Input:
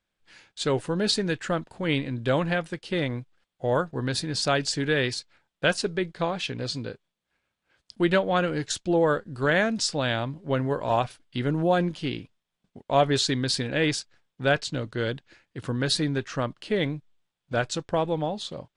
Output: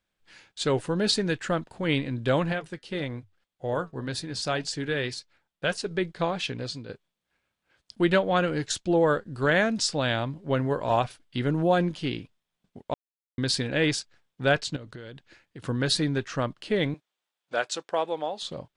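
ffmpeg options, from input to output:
-filter_complex "[0:a]asettb=1/sr,asplit=3[a][b][c];[a]atrim=end=2.524[d];[b]atrim=start=2.52:end=5.91,asetpts=PTS-STARTPTS,afade=t=in:d=0.004:c=qsin,afade=t=out:st=3.386:d=0.004:c=qsin,flanger=delay=2.2:depth=3.6:regen=-80:speed=1.8:shape=sinusoidal[e];[c]atrim=start=5.906[f];[d][e]acrossfade=d=0.004:c1=hsin:c2=qsin[g];[g][f]acrossfade=d=0.004:c1=qsin:c2=hsin,asettb=1/sr,asplit=3[h][i][j];[h]atrim=end=14.764[k];[i]atrim=start=14.76:end=15.64,asetpts=PTS-STARTPTS,afade=t=in:d=0.004:c=qsin,afade=t=out:st=0.876:d=0.004:c=qsin,acompressor=threshold=-37dB:ratio=16:attack=3.2:release=140:knee=1:detection=peak[l];[j]atrim=start=15.636[m];[k][l]acrossfade=d=0.004:c1=hsin:c2=qsin[n];[n][m]acrossfade=d=0.004:c1=qsin:c2=hsin,asettb=1/sr,asplit=3[o][p][q];[o]atrim=end=16.944[r];[p]atrim=start=16.94:end=18.42,asetpts=PTS-STARTPTS,afade=t=in:d=0.004:c=qsin,afade=t=out:st=1.476:d=0.004:c=qsin,highpass=460[s];[q]atrim=start=18.416[t];[r][s]acrossfade=d=0.004:c1=hsin:c2=qsin[u];[u][t]acrossfade=d=0.004:c1=qsin:c2=hsin,asplit=4[v][w][x][y];[v]atrim=end=6.89,asetpts=PTS-STARTPTS,afade=t=out:st=6.48:d=0.41:silence=0.354813[z];[w]atrim=start=6.89:end=12.94,asetpts=PTS-STARTPTS,afade=t=in:d=0.004:c=hsin:silence=0.354813,afade=t=out:st=6.046:d=0.004:c=hsin[aa];[x]atrim=start=12.94:end=13.38,asetpts=PTS-STARTPTS,volume=0[ab];[y]atrim=start=13.38,asetpts=PTS-STARTPTS,afade=t=in:d=0.004:c=hsin[ac];[z][aa][ab][ac]concat=n=4:v=0:a=1"

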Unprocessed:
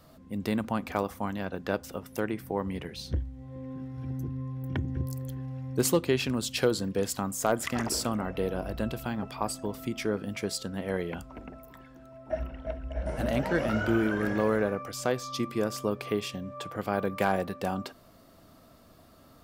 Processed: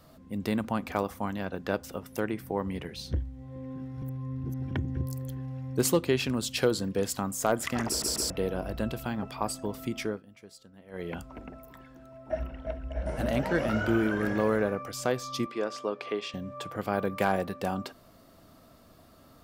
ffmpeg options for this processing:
-filter_complex "[0:a]asettb=1/sr,asplit=3[a][b][c];[a]atrim=end=15.464[d];[b]atrim=start=15.46:end=16.34,asetpts=PTS-STARTPTS,afade=t=in:d=0.004:c=qsin,afade=t=out:st=0.876:d=0.004:c=qsin,highpass=350,lowpass=4.9k[e];[c]atrim=start=16.336[f];[d][e]acrossfade=d=0.004:c1=hsin:c2=qsin[g];[g][f]acrossfade=d=0.004:c1=qsin:c2=hsin,asplit=8[h][i][j][k][l][m][n][o];[h]atrim=end=4.022[p];[i]atrim=start=4.018:end=4.712,asetpts=PTS-STARTPTS,areverse[q];[j]atrim=start=4.708:end=8.022[r];[k]atrim=start=7.878:end=8.022[s];[l]atrim=start=7.878:end=8.022[t];[m]atrim=start=8.298:end=10.22,asetpts=PTS-STARTPTS,afade=t=out:st=1.652:d=0.27:c=qsin:silence=0.11885[u];[n]atrim=start=10.22:end=10.91,asetpts=PTS-STARTPTS,volume=-18.5dB[v];[o]atrim=start=10.91,asetpts=PTS-STARTPTS,afade=t=in:d=0.27:c=qsin:silence=0.11885[w];[p][q]acrossfade=d=0.004:c1=hsin:c2=hsin[x];[x][r]acrossfade=d=0.004:c1=hsin:c2=hsin[y];[y][s]acrossfade=d=0.004:c1=hsin:c2=hsin[z];[z][t]acrossfade=d=0.004:c1=hsin:c2=hsin[aa];[u][v][w]concat=n=3:v=0:a=1[ab];[aa][ab]acrossfade=d=0.004:c1=hsin:c2=hsin"

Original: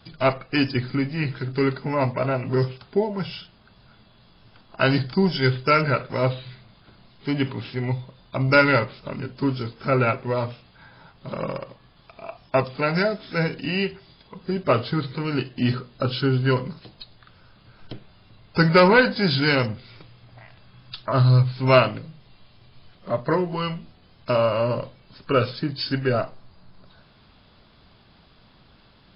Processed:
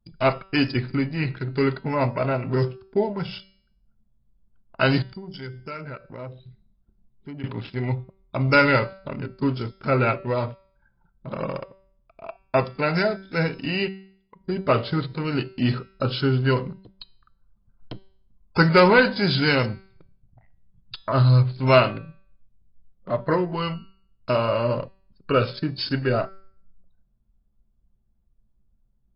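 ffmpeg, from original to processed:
-filter_complex "[0:a]asettb=1/sr,asplit=3[a][b][c];[a]atrim=end=5.024[d];[b]atrim=start=5.02:end=7.44,asetpts=PTS-STARTPTS,afade=t=in:d=0.004:c=qsin,afade=t=out:st=2.416:d=0.004:c=qsin,acompressor=threshold=-39dB:ratio=2.5:attack=3.2:release=140:knee=1:detection=peak[e];[c]atrim=start=7.436[f];[d][e]acrossfade=d=0.004:c1=hsin:c2=qsin[g];[g][f]acrossfade=d=0.004:c1=qsin:c2=hsin,asettb=1/sr,asplit=3[h][i][j];[h]atrim=end=13.884[k];[i]atrim=start=13.88:end=14.4,asetpts=PTS-STARTPTS,afade=t=in:d=0.004:c=qsin,afade=t=out:st=0.516:d=0.004:c=qsin,lowshelf=f=470:g=-9.5[l];[j]atrim=start=14.396[m];[k][l]acrossfade=d=0.004:c1=hsin:c2=qsin[n];[n][m]acrossfade=d=0.004:c1=qsin:c2=hsin,asettb=1/sr,asplit=3[o][p][q];[o]atrim=end=16.894[r];[p]atrim=start=16.89:end=18.64,asetpts=PTS-STARTPTS,afade=t=in:d=0.004:c=qsin,afade=t=out:st=1.746:d=0.004:c=qsin,equalizer=f=1k:w=1.6:g=6[s];[q]atrim=start=18.636[t];[r][s]acrossfade=d=0.004:c1=hsin:c2=qsin[u];[u][t]acrossfade=d=0.004:c1=qsin:c2=hsin,anlmdn=1.58,bandreject=f=192.1:t=h:w=4,bandreject=f=384.2:t=h:w=4,bandreject=f=576.3:t=h:w=4,bandreject=f=768.4:t=h:w=4,bandreject=f=960.5:t=h:w=4,bandreject=f=1.1526k:t=h:w=4,bandreject=f=1.3447k:t=h:w=4,bandreject=f=1.5368k:t=h:w=4,bandreject=f=1.7289k:t=h:w=4,bandreject=f=1.921k:t=h:w=4,bandreject=f=2.1131k:t=h:w=4,bandreject=f=2.3052k:t=h:w=4,bandreject=f=2.4973k:t=h:w=4,bandreject=f=2.6894k:t=h:w=4,bandreject=f=2.8815k:t=h:w=4,bandreject=f=3.0736k:t=h:w=4,bandreject=f=3.2657k:t=h:w=4,bandreject=f=3.4578k:t=h:w=4,bandreject=f=3.6499k:t=h:w=4,bandreject=f=3.842k:t=h:w=4,bandreject=f=4.0341k:t=h:w=4,bandreject=f=4.2262k:t=h:w=4,bandreject=f=4.4183k:t=h:w=4,bandreject=f=4.6104k:t=h:w=4,bandreject=f=4.8025k:t=h:w=4,bandreject=f=4.9946k:t=h:w=4,bandreject=f=5.1867k:t=h:w=4,bandreject=f=5.3788k:t=h:w=4,bandreject=f=5.5709k:t=h:w=4,bandreject=f=5.763k:t=h:w=4,bandreject=f=5.9551k:t=h:w=4"

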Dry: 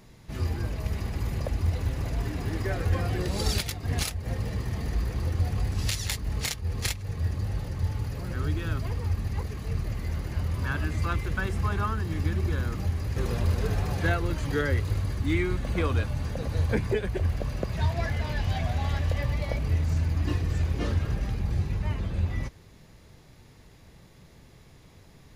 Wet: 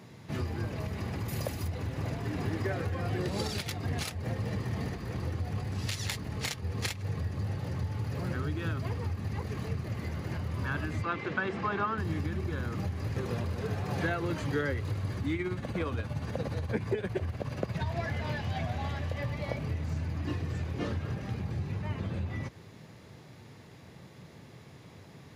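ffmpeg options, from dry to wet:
-filter_complex "[0:a]asettb=1/sr,asplit=3[a][b][c];[a]atrim=end=1.284[d];[b]atrim=start=1.28:end=1.68,asetpts=PTS-STARTPTS,afade=t=in:d=0.004:c=qsin,afade=t=out:st=0.396:d=0.004:c=qsin,aemphasis=mode=production:type=75fm[e];[c]atrim=start=1.676[f];[d][e]acrossfade=d=0.004:c1=hsin:c2=qsin[g];[g][f]acrossfade=d=0.004:c1=qsin:c2=hsin,asettb=1/sr,asplit=3[h][i][j];[h]atrim=end=11.024[k];[i]atrim=start=11.02:end=11.98,asetpts=PTS-STARTPTS,afade=t=in:d=0.004:c=qsin,afade=t=out:st=0.956:d=0.004:c=qsin,highpass=220,lowpass=3.9k[l];[j]atrim=start=11.976[m];[k][l]acrossfade=d=0.004:c1=hsin:c2=qsin[n];[n][m]acrossfade=d=0.004:c1=qsin:c2=hsin,asettb=1/sr,asplit=3[o][p][q];[o]atrim=end=13.834[r];[p]atrim=start=13.83:end=14.42,asetpts=PTS-STARTPTS,afade=t=in:d=0.004:c=qsin,afade=t=out:st=0.586:d=0.004:c=qsin,highpass=100[s];[q]atrim=start=14.416[t];[r][s]acrossfade=d=0.004:c1=hsin:c2=qsin[u];[u][t]acrossfade=d=0.004:c1=qsin:c2=hsin,asettb=1/sr,asplit=3[v][w][x];[v]atrim=end=15.354[y];[w]atrim=start=15.35:end=17.88,asetpts=PTS-STARTPTS,afade=t=in:d=0.004:c=qsin,afade=t=out:st=2.526:d=0.004:c=qsin,tremolo=f=17:d=0.55[z];[x]atrim=start=17.876[aa];[y][z]acrossfade=d=0.004:c1=hsin:c2=qsin[ab];[ab][aa]acrossfade=d=0.004:c1=qsin:c2=hsin,acompressor=threshold=-30dB:ratio=6,highpass=f=93:w=0.5412,highpass=f=93:w=1.3066,highshelf=f=5.1k:g=-8,volume=4dB"

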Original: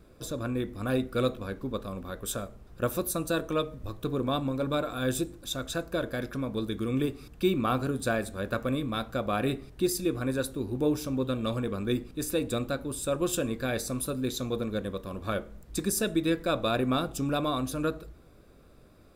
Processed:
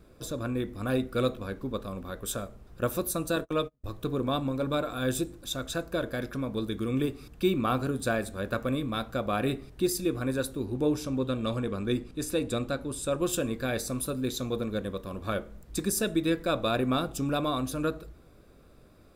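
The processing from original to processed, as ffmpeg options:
-filter_complex "[0:a]asettb=1/sr,asplit=3[a][b][c];[a]atrim=end=3.364[d];[b]atrim=start=3.36:end=3.84,asetpts=PTS-STARTPTS,afade=t=in:d=0.004:c=qsin,afade=t=out:st=0.476:d=0.004:c=qsin,agate=range=-34dB:threshold=-37dB:ratio=16:release=100:detection=peak[e];[c]atrim=start=3.836[f];[d][e]acrossfade=d=0.004:c1=hsin:c2=qsin[g];[g][f]acrossfade=d=0.004:c1=qsin:c2=hsin,asettb=1/sr,asplit=3[h][i][j];[h]atrim=end=10.654[k];[i]atrim=start=10.65:end=13.2,asetpts=PTS-STARTPTS,afade=t=in:d=0.004:c=qsin,afade=t=out:st=2.546:d=0.004:c=qsin,lowpass=11k[l];[j]atrim=start=13.196[m];[k][l]acrossfade=d=0.004:c1=hsin:c2=qsin[n];[n][m]acrossfade=d=0.004:c1=qsin:c2=hsin"

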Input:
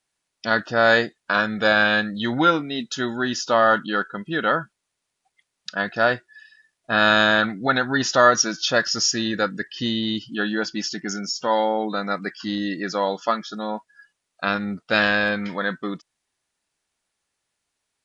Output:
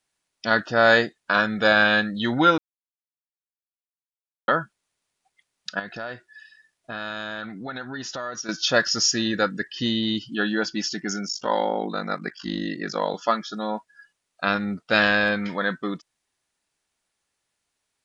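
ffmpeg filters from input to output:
-filter_complex "[0:a]asettb=1/sr,asplit=3[a][b][c];[a]atrim=end=5.794[d];[b]atrim=start=5.79:end=8.49,asetpts=PTS-STARTPTS,afade=t=in:d=0.004:c=qsin,afade=t=out:st=2.696:d=0.004:c=qsin,acompressor=threshold=-34dB:ratio=3:attack=3.2:release=140:knee=1:detection=peak[e];[c]atrim=start=8.486[f];[d][e]acrossfade=d=0.004:c1=hsin:c2=qsin[g];[g][f]acrossfade=d=0.004:c1=qsin:c2=hsin,asettb=1/sr,asplit=3[h][i][j];[h]atrim=end=11.274[k];[i]atrim=start=11.27:end=13.14,asetpts=PTS-STARTPTS,afade=t=in:d=0.004:c=qsin,afade=t=out:st=1.866:d=0.004:c=qsin,aeval=exprs='val(0)*sin(2*PI*25*n/s)':c=same[l];[j]atrim=start=13.136[m];[k][l]acrossfade=d=0.004:c1=hsin:c2=qsin[n];[n][m]acrossfade=d=0.004:c1=qsin:c2=hsin,asplit=3[o][p][q];[o]atrim=end=2.58,asetpts=PTS-STARTPTS,afade=t=out:st=2.576:d=0.004:c=hsin[r];[p]atrim=start=2.58:end=4.48,asetpts=PTS-STARTPTS,volume=0[s];[q]atrim=start=4.48,asetpts=PTS-STARTPTS,afade=t=in:d=0.004:c=hsin[t];[r][s][t]concat=n=3:v=0:a=1"

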